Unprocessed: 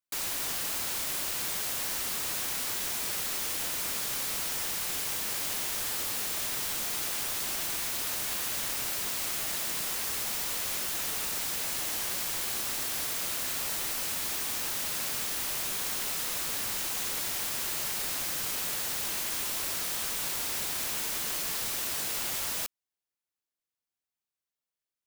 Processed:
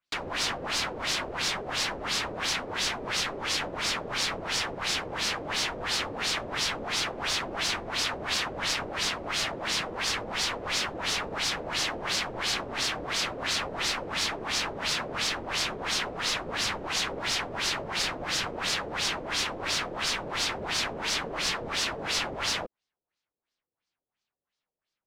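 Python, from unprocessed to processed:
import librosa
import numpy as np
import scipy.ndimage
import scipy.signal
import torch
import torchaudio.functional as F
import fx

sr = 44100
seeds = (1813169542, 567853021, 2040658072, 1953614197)

y = fx.filter_lfo_lowpass(x, sr, shape='sine', hz=2.9, low_hz=470.0, high_hz=5300.0, q=1.9)
y = y * 10.0 ** (7.0 / 20.0)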